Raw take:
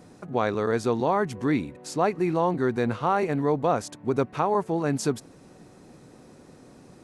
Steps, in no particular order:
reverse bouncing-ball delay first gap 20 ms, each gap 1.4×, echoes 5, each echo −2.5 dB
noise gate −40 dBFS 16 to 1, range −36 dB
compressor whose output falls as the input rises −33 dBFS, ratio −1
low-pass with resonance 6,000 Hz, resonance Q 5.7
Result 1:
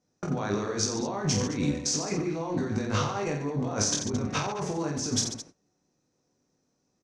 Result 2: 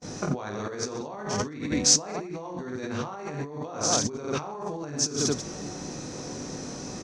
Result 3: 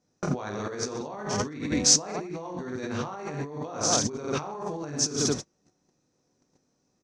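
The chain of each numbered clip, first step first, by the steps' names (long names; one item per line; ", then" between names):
low-pass with resonance, then noise gate, then compressor whose output falls as the input rises, then reverse bouncing-ball delay
reverse bouncing-ball delay, then compressor whose output falls as the input rises, then low-pass with resonance, then noise gate
reverse bouncing-ball delay, then noise gate, then compressor whose output falls as the input rises, then low-pass with resonance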